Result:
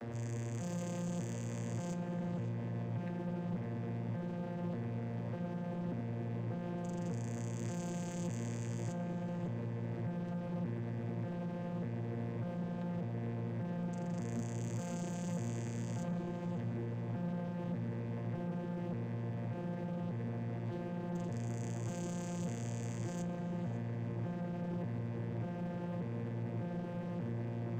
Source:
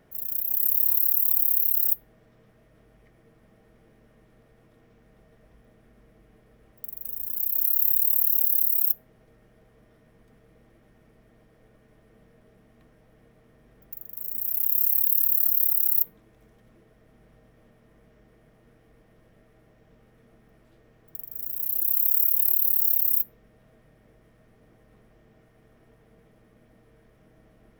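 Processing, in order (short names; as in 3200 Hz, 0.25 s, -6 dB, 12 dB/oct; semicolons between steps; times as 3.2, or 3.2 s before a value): arpeggiated vocoder bare fifth, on A#2, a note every 0.591 s; sample leveller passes 2; darkening echo 0.55 s, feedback 77%, low-pass 2200 Hz, level -8 dB; gain +15.5 dB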